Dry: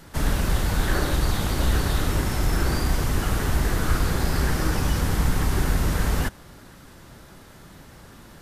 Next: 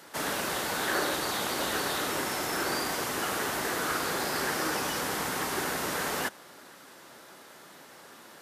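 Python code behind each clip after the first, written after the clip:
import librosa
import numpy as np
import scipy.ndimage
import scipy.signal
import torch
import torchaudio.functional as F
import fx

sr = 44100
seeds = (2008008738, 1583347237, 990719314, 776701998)

y = scipy.signal.sosfilt(scipy.signal.butter(2, 390.0, 'highpass', fs=sr, output='sos'), x)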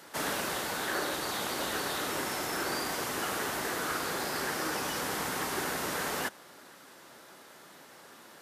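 y = fx.rider(x, sr, range_db=10, speed_s=0.5)
y = y * librosa.db_to_amplitude(-2.5)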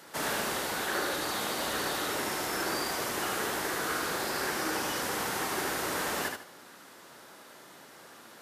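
y = fx.echo_feedback(x, sr, ms=76, feedback_pct=27, wet_db=-5)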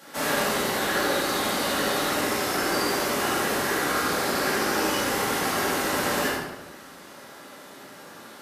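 y = fx.room_shoebox(x, sr, seeds[0], volume_m3=320.0, walls='mixed', distance_m=2.3)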